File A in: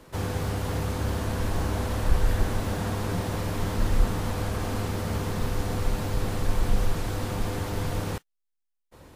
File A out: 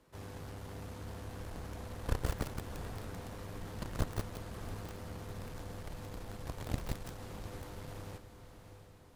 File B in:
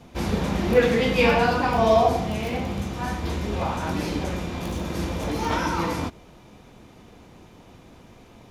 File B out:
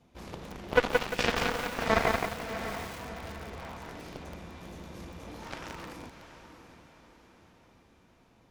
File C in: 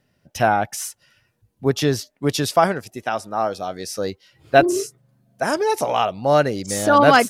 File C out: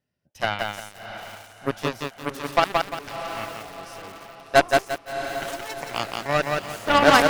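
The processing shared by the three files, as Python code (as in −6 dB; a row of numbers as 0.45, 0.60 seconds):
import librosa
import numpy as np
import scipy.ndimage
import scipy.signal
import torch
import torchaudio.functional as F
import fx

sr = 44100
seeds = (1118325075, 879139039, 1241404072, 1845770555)

y = fx.cheby_harmonics(x, sr, harmonics=(4, 6, 7, 8), levels_db=(-20, -43, -15, -40), full_scale_db=-1.0)
y = fx.echo_diffused(y, sr, ms=692, feedback_pct=48, wet_db=-9.5)
y = fx.echo_crushed(y, sr, ms=174, feedback_pct=35, bits=6, wet_db=-3)
y = y * 10.0 ** (-3.5 / 20.0)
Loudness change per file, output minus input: −14.0, −8.5, −4.5 LU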